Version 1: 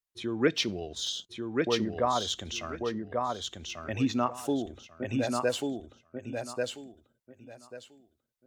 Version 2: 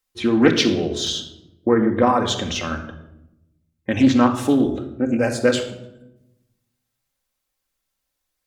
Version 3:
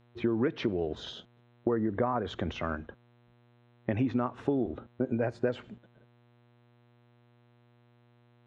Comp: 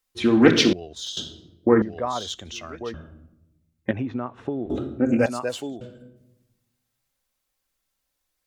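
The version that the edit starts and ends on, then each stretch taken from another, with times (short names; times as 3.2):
2
0.73–1.17 from 1
1.82–2.94 from 1
3.91–4.7 from 3
5.26–5.81 from 1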